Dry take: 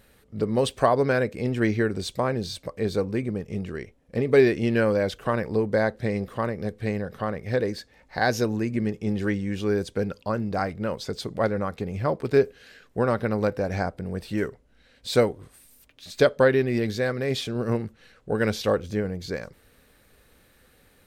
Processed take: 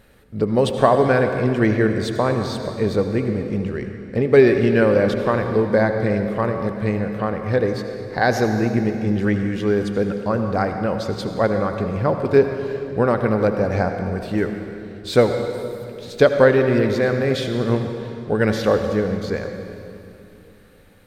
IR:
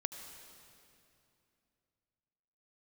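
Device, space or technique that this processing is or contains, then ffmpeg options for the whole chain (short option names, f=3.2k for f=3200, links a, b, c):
swimming-pool hall: -filter_complex "[1:a]atrim=start_sample=2205[a];[0:a][a]afir=irnorm=-1:irlink=0,highshelf=f=3.5k:g=-7,volume=6.5dB"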